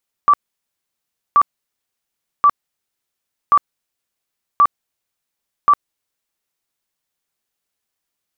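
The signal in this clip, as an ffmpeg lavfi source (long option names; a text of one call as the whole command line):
ffmpeg -f lavfi -i "aevalsrc='0.447*sin(2*PI*1160*mod(t,1.08))*lt(mod(t,1.08),65/1160)':duration=6.48:sample_rate=44100" out.wav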